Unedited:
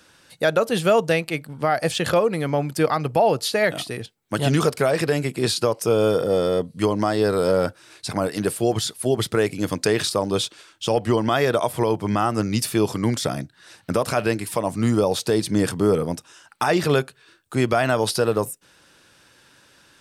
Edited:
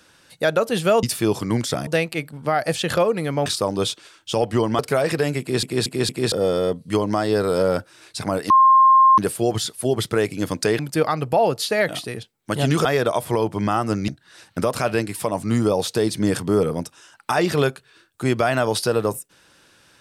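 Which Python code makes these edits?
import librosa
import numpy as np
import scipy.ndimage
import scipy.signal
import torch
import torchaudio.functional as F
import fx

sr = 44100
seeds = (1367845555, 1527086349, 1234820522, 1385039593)

y = fx.edit(x, sr, fx.swap(start_s=2.62, length_s=2.06, other_s=10.0, other_length_s=1.33),
    fx.stutter_over(start_s=5.29, slice_s=0.23, count=4),
    fx.insert_tone(at_s=8.39, length_s=0.68, hz=1060.0, db=-9.0),
    fx.move(start_s=12.56, length_s=0.84, to_s=1.03), tone=tone)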